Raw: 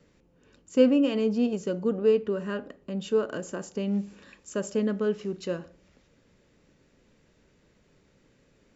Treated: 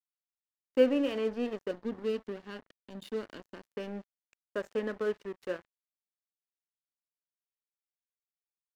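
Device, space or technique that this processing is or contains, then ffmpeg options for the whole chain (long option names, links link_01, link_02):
pocket radio on a weak battery: -filter_complex "[0:a]asettb=1/sr,asplit=3[link_01][link_02][link_03];[link_01]atrim=end=1.714[link_04];[link_02]atrim=start=1.71:end=3.75,asetpts=PTS-STARTPTS,afade=type=in:duration=0.004:curve=qsin,afade=type=out:start_time=2.036:duration=0.004:curve=qsin,equalizer=frequency=250:width_type=o:width=1:gain=6,equalizer=frequency=500:width_type=o:width=1:gain=-9,equalizer=frequency=1000:width_type=o:width=1:gain=-6,equalizer=frequency=2000:width_type=o:width=1:gain=-10,equalizer=frequency=4000:width_type=o:width=1:gain=10[link_05];[link_03]atrim=start=3.746[link_06];[link_04][link_05]acrossfade=duration=0.004:curve1=hsin:curve2=qsin[link_07];[link_07][link_06]acrossfade=duration=0.004:curve1=qsin:curve2=hsin,highpass=340,lowpass=3300,aeval=exprs='sgn(val(0))*max(abs(val(0))-0.00708,0)':channel_layout=same,equalizer=frequency=1800:width_type=o:width=0.27:gain=6,volume=-1.5dB"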